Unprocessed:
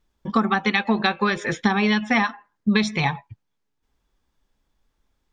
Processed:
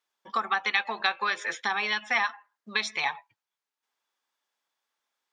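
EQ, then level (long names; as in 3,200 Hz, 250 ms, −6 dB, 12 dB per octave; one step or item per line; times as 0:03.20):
high-pass filter 810 Hz 12 dB per octave
−3.0 dB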